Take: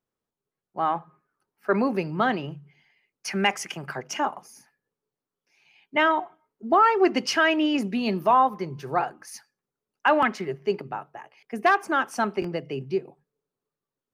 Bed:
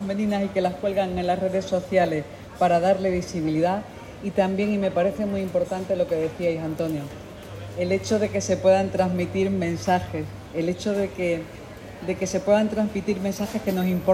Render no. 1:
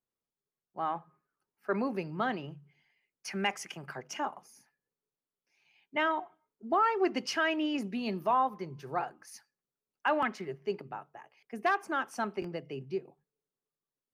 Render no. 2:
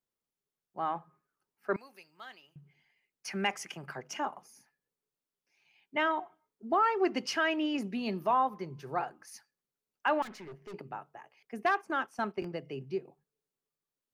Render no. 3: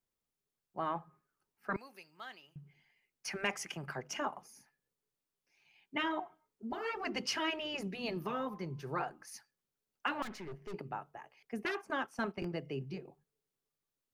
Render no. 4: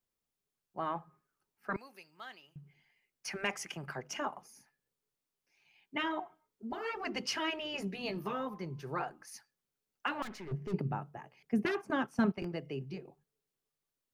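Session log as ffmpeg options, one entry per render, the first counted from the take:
ffmpeg -i in.wav -af "volume=-8.5dB" out.wav
ffmpeg -i in.wav -filter_complex "[0:a]asettb=1/sr,asplit=3[link_01][link_02][link_03];[link_01]atrim=end=1.764[link_04];[link_02]atrim=start=1.76:end=2.56,asetpts=PTS-STARTPTS,afade=type=in:duration=0.004:curve=qsin,afade=type=out:start_time=0.796:duration=0.004:curve=qsin,aderivative[link_05];[link_03]atrim=start=2.556[link_06];[link_04][link_05]acrossfade=duration=0.004:curve1=hsin:curve2=qsin[link_07];[link_07][link_06]acrossfade=duration=0.004:curve1=qsin:curve2=hsin,asettb=1/sr,asplit=3[link_08][link_09][link_10];[link_08]atrim=end=10.224[link_11];[link_09]atrim=start=10.22:end=10.74,asetpts=PTS-STARTPTS,afade=type=in:duration=0.004:curve=qsin,afade=type=out:start_time=0.516:duration=0.004:curve=qsin,aeval=exprs='(tanh(141*val(0)+0.25)-tanh(0.25))/141':channel_layout=same[link_12];[link_10]atrim=start=10.736[link_13];[link_11][link_12]acrossfade=duration=0.004:curve1=hsin:curve2=qsin[link_14];[link_14][link_13]acrossfade=duration=0.004:curve1=qsin:curve2=hsin,asplit=3[link_15][link_16][link_17];[link_15]afade=type=out:start_time=11.62:duration=0.02[link_18];[link_16]agate=range=-10dB:threshold=-43dB:ratio=16:release=100:detection=peak,afade=type=in:start_time=11.62:duration=0.02,afade=type=out:start_time=12.52:duration=0.02[link_19];[link_17]afade=type=in:start_time=12.52:duration=0.02[link_20];[link_18][link_19][link_20]amix=inputs=3:normalize=0" out.wav
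ffmpeg -i in.wav -af "afftfilt=real='re*lt(hypot(re,im),0.178)':imag='im*lt(hypot(re,im),0.178)':win_size=1024:overlap=0.75,lowshelf=frequency=84:gain=10" out.wav
ffmpeg -i in.wav -filter_complex "[0:a]asettb=1/sr,asplit=3[link_01][link_02][link_03];[link_01]atrim=end=7.724[link_04];[link_02]atrim=start=7.72:end=8.33,asetpts=PTS-STARTPTS,afade=type=in:duration=0.004:curve=qsin,afade=type=out:start_time=0.606:duration=0.004:curve=qsin,asplit=2[link_05][link_06];[link_06]adelay=15,volume=-7dB[link_07];[link_05][link_07]amix=inputs=2:normalize=0,atrim=end_sample=26901[link_08];[link_03]atrim=start=8.326[link_09];[link_04][link_08]acrossfade=duration=0.004:curve1=hsin:curve2=qsin[link_10];[link_10][link_09]acrossfade=duration=0.004:curve1=qsin:curve2=hsin,asettb=1/sr,asplit=3[link_11][link_12][link_13];[link_11]atrim=end=10.514[link_14];[link_12]atrim=start=10.51:end=12.32,asetpts=PTS-STARTPTS,afade=type=in:duration=0.004:curve=qsin,afade=type=out:start_time=1.806:duration=0.004:curve=qsin,equalizer=frequency=150:width_type=o:width=2.1:gain=14.5[link_15];[link_13]atrim=start=12.316[link_16];[link_14][link_15]acrossfade=duration=0.004:curve1=hsin:curve2=qsin[link_17];[link_17][link_16]acrossfade=duration=0.004:curve1=qsin:curve2=hsin" out.wav

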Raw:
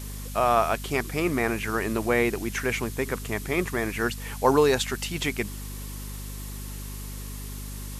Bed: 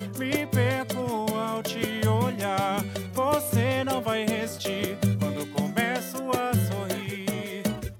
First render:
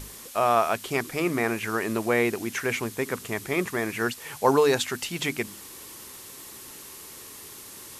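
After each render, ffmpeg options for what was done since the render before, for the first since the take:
ffmpeg -i in.wav -af "bandreject=frequency=50:width_type=h:width=6,bandreject=frequency=100:width_type=h:width=6,bandreject=frequency=150:width_type=h:width=6,bandreject=frequency=200:width_type=h:width=6,bandreject=frequency=250:width_type=h:width=6,bandreject=frequency=300:width_type=h:width=6" out.wav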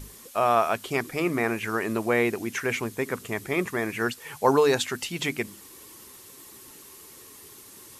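ffmpeg -i in.wav -af "afftdn=noise_reduction=6:noise_floor=-44" out.wav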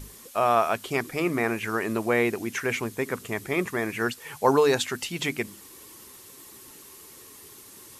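ffmpeg -i in.wav -af anull out.wav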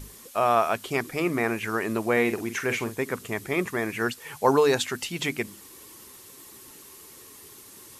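ffmpeg -i in.wav -filter_complex "[0:a]asettb=1/sr,asplit=3[link_01][link_02][link_03];[link_01]atrim=end=2.124[link_04];[link_02]atrim=start=2.12:end=2.96,asetpts=PTS-STARTPTS,afade=type=in:duration=0.004:curve=qsin,afade=type=out:start_time=0.836:duration=0.004:curve=qsin,asplit=2[link_05][link_06];[link_06]adelay=46,volume=-10dB[link_07];[link_05][link_07]amix=inputs=2:normalize=0,atrim=end_sample=37044[link_08];[link_03]atrim=start=2.956[link_09];[link_04][link_08]acrossfade=duration=0.004:curve1=hsin:curve2=qsin[link_10];[link_10][link_09]acrossfade=duration=0.004:curve1=qsin:curve2=hsin" out.wav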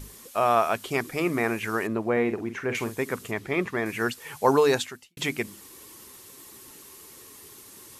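ffmpeg -i in.wav -filter_complex "[0:a]asettb=1/sr,asplit=3[link_01][link_02][link_03];[link_01]atrim=end=1.874[link_04];[link_02]atrim=start=1.87:end=2.75,asetpts=PTS-STARTPTS,afade=type=in:duration=0.004:curve=qsin,afade=type=out:start_time=0.876:duration=0.004:curve=qsin,lowpass=frequency=1200:poles=1[link_05];[link_03]atrim=start=2.746[link_06];[link_04][link_05]acrossfade=duration=0.004:curve1=hsin:curve2=qsin[link_07];[link_07][link_06]acrossfade=duration=0.004:curve1=qsin:curve2=hsin,asettb=1/sr,asplit=3[link_08][link_09][link_10];[link_08]atrim=end=3.314[link_11];[link_09]atrim=start=3.31:end=3.86,asetpts=PTS-STARTPTS,afade=type=in:duration=0.004:curve=qsin,afade=type=out:start_time=0.546:duration=0.004:curve=qsin,acrossover=split=4900[link_12][link_13];[link_13]acompressor=threshold=-58dB:ratio=4:attack=1:release=60[link_14];[link_12][link_14]amix=inputs=2:normalize=0[link_15];[link_10]atrim=start=3.856[link_16];[link_11][link_15]acrossfade=duration=0.004:curve1=hsin:curve2=qsin[link_17];[link_17][link_16]acrossfade=duration=0.004:curve1=qsin:curve2=hsin,asplit=2[link_18][link_19];[link_18]atrim=end=5.17,asetpts=PTS-STARTPTS,afade=type=out:start_time=4.75:duration=0.42:curve=qua[link_20];[link_19]atrim=start=5.17,asetpts=PTS-STARTPTS,afade=type=in:duration=0.004:curve=hsin[link_21];[link_20][link_21]concat=n=2:v=0:a=1" out.wav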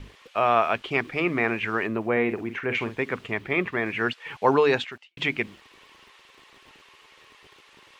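ffmpeg -i in.wav -filter_complex "[0:a]acrossover=split=510[link_01][link_02];[link_01]aeval=exprs='val(0)*gte(abs(val(0)),0.00266)':channel_layout=same[link_03];[link_02]lowpass=frequency=2800:width_type=q:width=1.8[link_04];[link_03][link_04]amix=inputs=2:normalize=0" out.wav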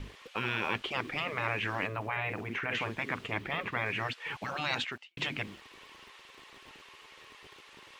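ffmpeg -i in.wav -af "afftfilt=real='re*lt(hypot(re,im),0.141)':imag='im*lt(hypot(re,im),0.141)':win_size=1024:overlap=0.75" out.wav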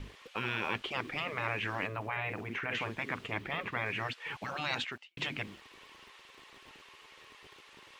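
ffmpeg -i in.wav -af "volume=-2dB" out.wav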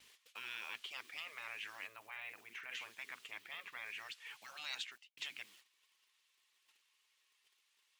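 ffmpeg -i in.wav -af "agate=range=-13dB:threshold=-52dB:ratio=16:detection=peak,aderivative" out.wav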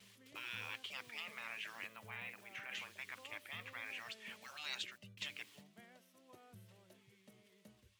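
ffmpeg -i in.wav -i bed.wav -filter_complex "[1:a]volume=-35.5dB[link_01];[0:a][link_01]amix=inputs=2:normalize=0" out.wav

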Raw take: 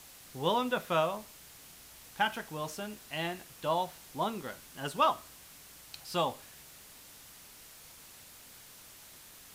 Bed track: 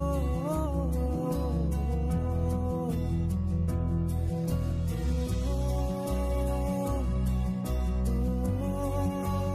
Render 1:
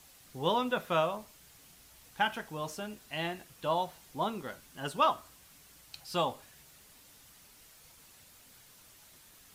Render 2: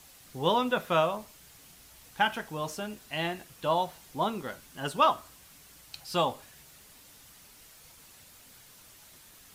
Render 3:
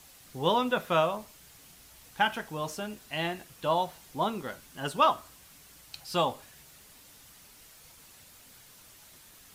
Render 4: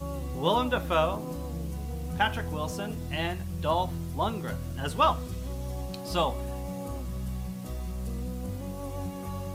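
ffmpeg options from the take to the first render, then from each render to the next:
ffmpeg -i in.wav -af "afftdn=noise_reduction=6:noise_floor=-54" out.wav
ffmpeg -i in.wav -af "volume=3.5dB" out.wav
ffmpeg -i in.wav -af anull out.wav
ffmpeg -i in.wav -i bed.wav -filter_complex "[1:a]volume=-6dB[link_01];[0:a][link_01]amix=inputs=2:normalize=0" out.wav

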